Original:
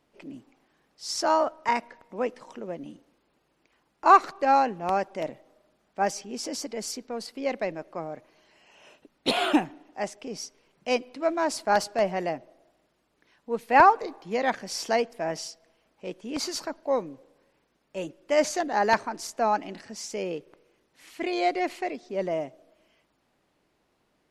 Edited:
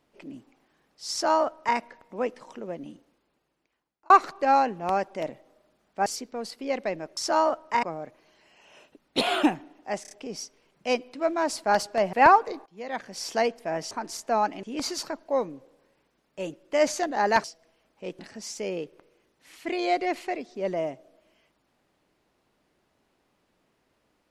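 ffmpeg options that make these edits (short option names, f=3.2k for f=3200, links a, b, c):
-filter_complex "[0:a]asplit=14[a][b][c][d][e][f][g][h][i][j][k][l][m][n];[a]atrim=end=4.1,asetpts=PTS-STARTPTS,afade=t=out:st=2.88:d=1.22[o];[b]atrim=start=4.1:end=6.062,asetpts=PTS-STARTPTS,afade=t=in:d=0.004:c=hsin[p];[c]atrim=start=6.818:end=7.932[q];[d]atrim=start=1.108:end=1.772[r];[e]atrim=start=7.928:end=10.152[s];[f]atrim=start=10.118:end=10.152[t];[g]atrim=start=10.118:end=10.152[u];[h]atrim=start=10.118:end=12.142[v];[i]atrim=start=13.668:end=14.2,asetpts=PTS-STARTPTS,afade=t=out:st=0.528:d=0.004:c=hsin:silence=0.0944061[w];[j]atrim=start=14.2:end=15.452,asetpts=PTS-STARTPTS,afade=t=in:d=0.73:silence=0.0944061[x];[k]atrim=start=19.008:end=19.732[y];[l]atrim=start=16.198:end=19.012[z];[m]atrim=start=15.448:end=16.202[aa];[n]atrim=start=19.728[ab];[o][p]concat=n=2:v=0:a=1[ac];[ac][q]acrossfade=d=0.004:c1=hsin:c2=hsin[ad];[ad][r]acrossfade=d=0.004:c1=hsin:c2=hsin[ae];[ae][s]acrossfade=d=0.004:c1=hsin:c2=hsin[af];[af][t]acrossfade=d=0.004:c1=hsin:c2=hsin[ag];[ag][u]acrossfade=d=0.004:c1=hsin:c2=hsin[ah];[ah][v]acrossfade=d=0.004:c1=hsin:c2=hsin[ai];[w][x]concat=n=2:v=0:a=1[aj];[ai][aj]acrossfade=d=0.004:c1=hsin:c2=hsin[ak];[ak][y]acrossfade=d=0.004:c1=hsin:c2=hsin[al];[al][z]acrossfade=d=0.004:c1=hsin:c2=hsin[am];[am][aa]acrossfade=d=0.004:c1=hsin:c2=hsin[an];[an][ab]acrossfade=d=0.004:c1=hsin:c2=hsin"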